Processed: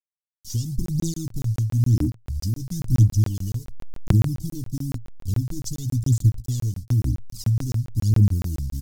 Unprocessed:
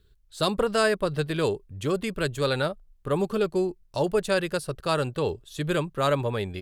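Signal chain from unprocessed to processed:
hold until the input has moved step −40.5 dBFS
gain into a clipping stage and back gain 18.5 dB
parametric band 150 Hz +12 dB 0.34 octaves
downward compressor, threshold −24 dBFS, peak gain reduction 8.5 dB
elliptic band-stop filter 330–6,700 Hz, stop band 40 dB
phase shifter 1.3 Hz, delay 1.6 ms, feedback 73%
speed change −25%
double-tracking delay 16 ms −11 dB
regular buffer underruns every 0.14 s, samples 1,024, zero, from 0:00.86
level +5.5 dB

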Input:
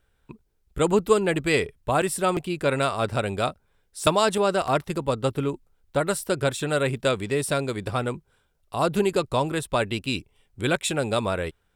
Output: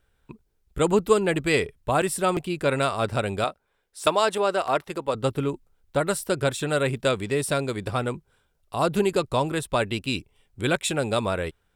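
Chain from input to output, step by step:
0:03.44–0:05.15: bass and treble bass −12 dB, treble −4 dB

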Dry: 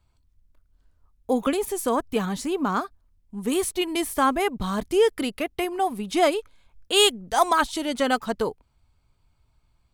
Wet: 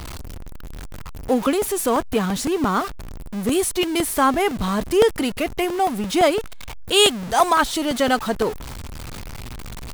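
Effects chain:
converter with a step at zero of −29.5 dBFS
regular buffer underruns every 0.17 s, samples 64, repeat, from 0:00.94
level +2.5 dB

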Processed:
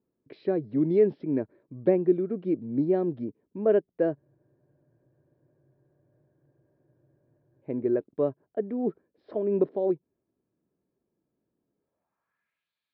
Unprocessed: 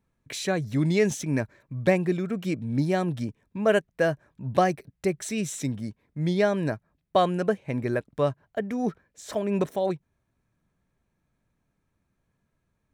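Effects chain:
downsampling to 11,025 Hz
band-pass filter sweep 360 Hz → 3,700 Hz, 0:11.74–0:12.72
frozen spectrum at 0:04.17, 3.45 s
level +5 dB

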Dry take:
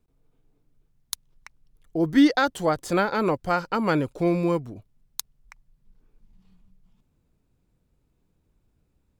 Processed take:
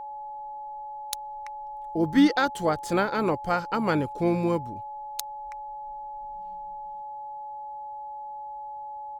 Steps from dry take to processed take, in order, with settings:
steady tone 850 Hz −33 dBFS
pitch-shifted copies added −7 semitones −17 dB
level −2 dB

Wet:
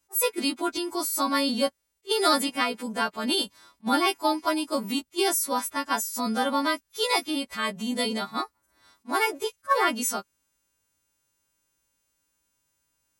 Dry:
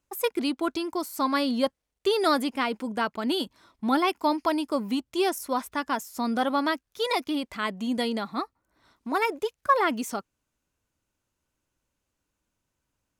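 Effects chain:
every partial snapped to a pitch grid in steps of 2 semitones
level that may rise only so fast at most 540 dB per second

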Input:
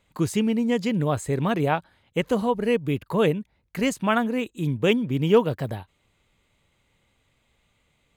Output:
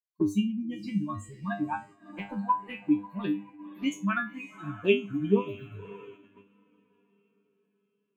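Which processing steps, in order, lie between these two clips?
spectral dynamics exaggerated over time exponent 3
high-pass filter 41 Hz 6 dB per octave
parametric band 300 Hz +15 dB 1.1 octaves
feedback delay with all-pass diffusion 564 ms, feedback 44%, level −15.5 dB
flanger swept by the level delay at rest 4.9 ms, full sweep at −16 dBFS
thirty-one-band graphic EQ 250 Hz −4 dB, 500 Hz −12 dB, 1,000 Hz +9 dB, 1,600 Hz +10 dB, 2,500 Hz +10 dB, 10,000 Hz −7 dB
noise gate −44 dBFS, range −10 dB
tuned comb filter 100 Hz, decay 0.26 s, harmonics all, mix 100%
level +4.5 dB

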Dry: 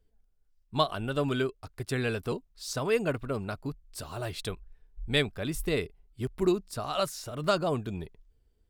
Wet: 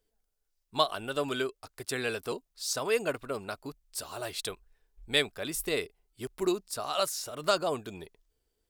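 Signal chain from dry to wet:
bass and treble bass −13 dB, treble +6 dB

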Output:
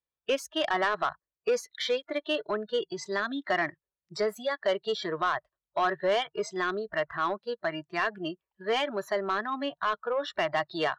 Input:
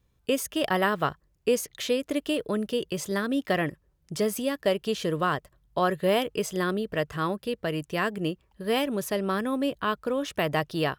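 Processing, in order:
noise reduction from a noise print of the clip's start 23 dB
three-way crossover with the lows and the highs turned down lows −18 dB, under 410 Hz, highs −22 dB, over 5,400 Hz
in parallel at −3 dB: brickwall limiter −22.5 dBFS, peak gain reduction 10 dB
on the sum: soft clipping −18.5 dBFS, distortion −15 dB

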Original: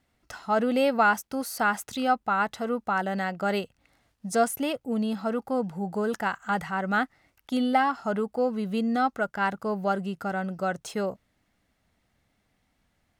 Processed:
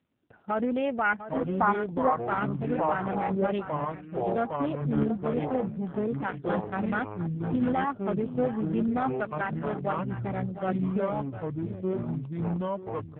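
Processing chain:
adaptive Wiener filter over 41 samples
0:09.01–0:10.11: high-pass filter 200 Hz 6 dB per octave
brickwall limiter −18.5 dBFS, peak gain reduction 7.5 dB
0:01.03–0:02.11: low-pass with resonance 2,300 Hz → 630 Hz, resonance Q 4
on a send: single-tap delay 702 ms −12.5 dB
on the sum: delay with pitch and tempo change per echo 651 ms, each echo −5 semitones, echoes 2
AMR narrowband 5.9 kbit/s 8,000 Hz

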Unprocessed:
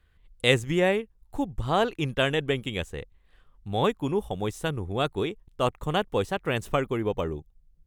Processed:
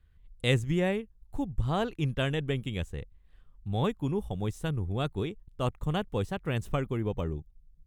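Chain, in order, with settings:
bass and treble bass +10 dB, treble +1 dB
level −7.5 dB

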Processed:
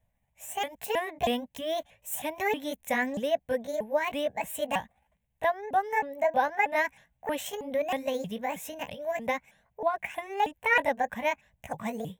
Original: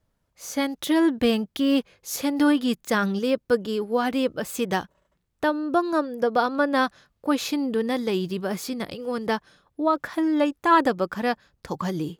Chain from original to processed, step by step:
pitch shifter swept by a sawtooth +7 semitones, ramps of 317 ms
phaser with its sweep stopped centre 1,300 Hz, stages 6

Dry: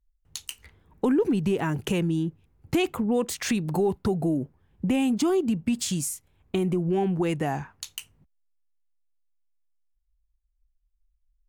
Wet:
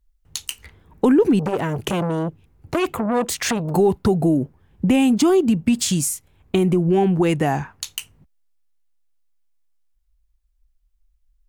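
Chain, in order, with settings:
0:01.39–0:03.74: saturating transformer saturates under 1,000 Hz
level +7.5 dB

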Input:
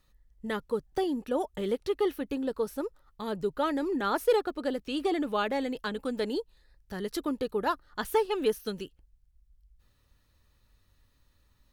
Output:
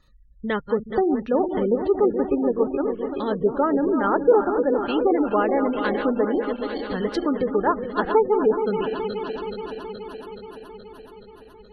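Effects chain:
feedback delay that plays each chunk backwards 212 ms, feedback 82%, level −8.5 dB
treble cut that deepens with the level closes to 1,400 Hz, closed at −24.5 dBFS
gate on every frequency bin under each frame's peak −30 dB strong
level +8 dB

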